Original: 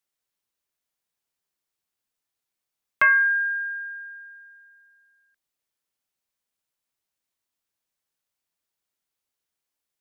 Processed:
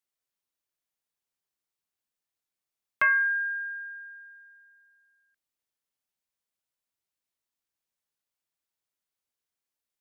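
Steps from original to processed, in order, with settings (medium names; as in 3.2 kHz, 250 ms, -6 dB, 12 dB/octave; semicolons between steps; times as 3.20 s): 4.11–4.54 s: brick-wall FIR high-pass 230 Hz; trim -5 dB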